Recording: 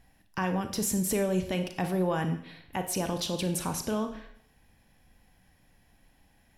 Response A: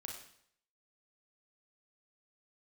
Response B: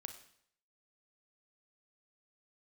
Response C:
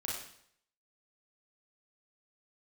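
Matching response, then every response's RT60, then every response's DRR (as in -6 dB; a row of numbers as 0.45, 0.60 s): B; 0.65, 0.65, 0.65 s; 0.0, 7.0, -4.5 dB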